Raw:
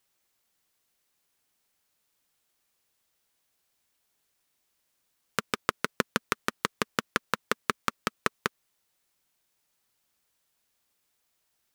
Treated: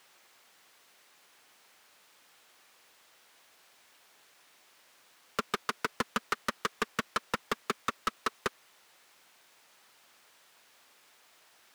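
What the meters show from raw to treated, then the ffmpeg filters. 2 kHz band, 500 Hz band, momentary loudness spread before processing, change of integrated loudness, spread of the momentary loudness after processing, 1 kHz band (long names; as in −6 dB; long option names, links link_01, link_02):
−4.5 dB, −3.5 dB, 5 LU, −3.5 dB, 4 LU, −2.0 dB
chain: -filter_complex "[0:a]asplit=2[link_01][link_02];[link_02]highpass=frequency=720:poles=1,volume=32dB,asoftclip=type=tanh:threshold=-1.5dB[link_03];[link_01][link_03]amix=inputs=2:normalize=0,lowpass=frequency=2300:poles=1,volume=-6dB,asoftclip=type=tanh:threshold=-19dB,volume=-4dB"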